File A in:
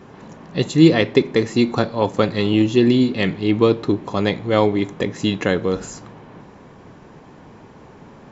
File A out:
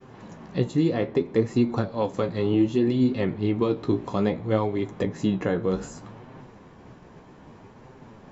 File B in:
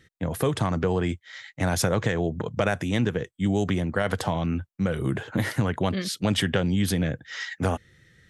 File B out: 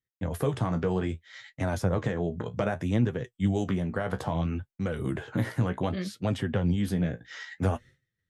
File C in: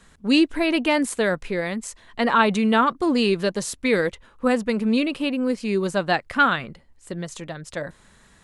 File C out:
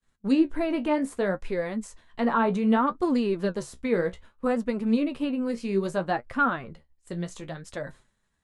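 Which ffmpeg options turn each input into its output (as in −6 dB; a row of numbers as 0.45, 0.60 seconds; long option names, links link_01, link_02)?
-filter_complex "[0:a]agate=range=-33dB:threshold=-41dB:ratio=3:detection=peak,lowshelf=frequency=74:gain=5.5,acrossover=split=1500[link_01][link_02];[link_01]alimiter=limit=-8dB:level=0:latency=1:release=332[link_03];[link_02]acompressor=threshold=-39dB:ratio=6[link_04];[link_03][link_04]amix=inputs=2:normalize=0,flanger=delay=7.6:depth=9.7:regen=43:speed=0.63:shape=sinusoidal"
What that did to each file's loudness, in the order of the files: −6.5, −3.5, −5.0 LU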